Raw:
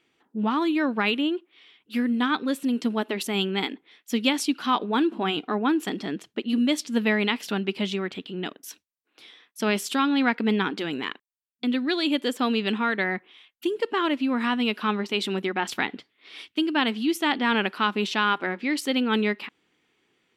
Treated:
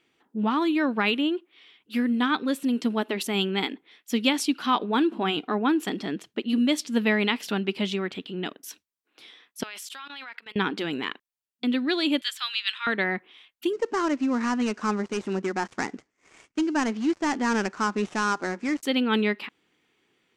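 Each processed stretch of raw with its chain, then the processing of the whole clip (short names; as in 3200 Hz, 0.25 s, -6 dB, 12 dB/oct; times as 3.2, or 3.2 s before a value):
9.63–10.56 HPF 1200 Hz + level quantiser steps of 20 dB
12.21–12.87 HPF 1400 Hz 24 dB/oct + bell 3900 Hz +6.5 dB 0.67 oct
13.73–18.83 switching dead time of 0.12 ms + LPF 6800 Hz 24 dB/oct + bell 3400 Hz -10 dB 1 oct
whole clip: dry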